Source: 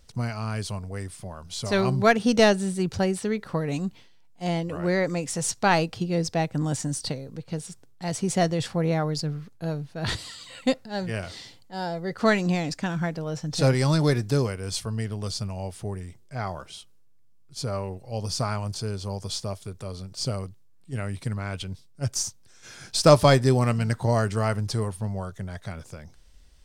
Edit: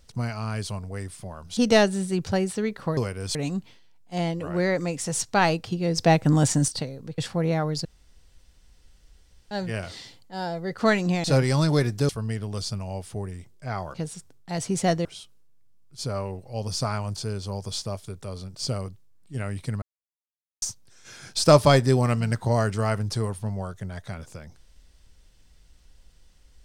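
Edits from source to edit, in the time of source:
1.57–2.24 cut
6.27–6.97 gain +7 dB
7.47–8.58 move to 16.63
9.25–10.91 room tone
12.64–13.55 cut
14.4–14.78 move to 3.64
21.4–22.2 mute

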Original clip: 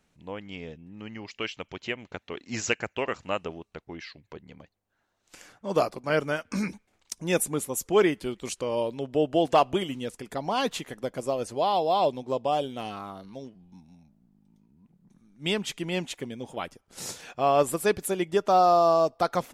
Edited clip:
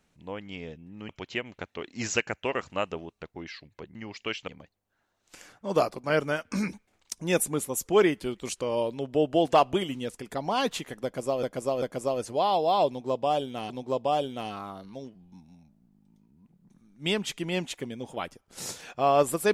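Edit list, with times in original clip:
1.09–1.62 move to 4.48
11.04–11.43 loop, 3 plays
12.1–12.92 loop, 2 plays

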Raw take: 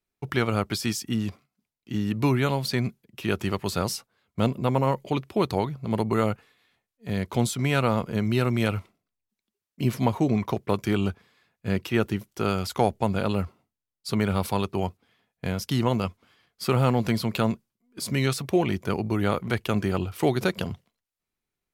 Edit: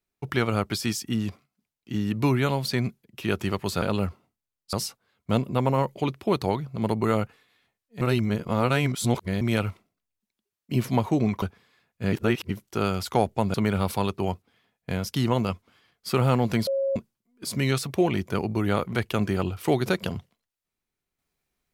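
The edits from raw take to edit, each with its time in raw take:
7.1–8.5 reverse
10.51–11.06 cut
11.77–12.14 reverse
13.18–14.09 move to 3.82
17.22–17.51 bleep 545 Hz -22 dBFS

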